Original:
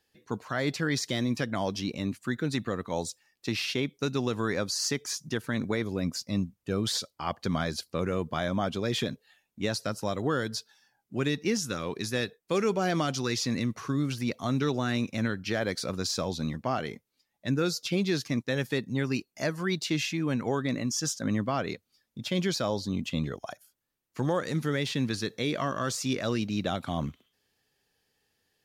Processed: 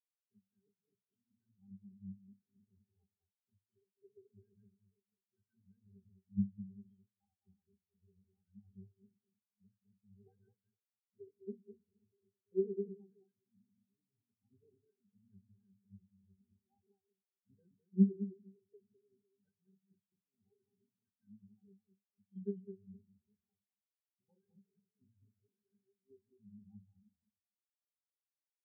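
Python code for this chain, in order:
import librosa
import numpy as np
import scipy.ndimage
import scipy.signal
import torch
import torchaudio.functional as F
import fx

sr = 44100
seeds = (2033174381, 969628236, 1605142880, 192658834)

y = fx.high_shelf(x, sr, hz=4100.0, db=8.0)
y = fx.level_steps(y, sr, step_db=13)
y = fx.low_shelf(y, sr, hz=480.0, db=6.5)
y = fx.hum_notches(y, sr, base_hz=60, count=4)
y = fx.octave_resonator(y, sr, note='G', decay_s=0.19)
y = fx.echo_multitap(y, sr, ms=(209, 464), db=(-4.0, -14.0))
y = fx.rev_schroeder(y, sr, rt60_s=0.7, comb_ms=27, drr_db=10.0)
y = fx.vibrato(y, sr, rate_hz=6.1, depth_cents=50.0)
y = fx.spectral_expand(y, sr, expansion=2.5)
y = y * 10.0 ** (1.0 / 20.0)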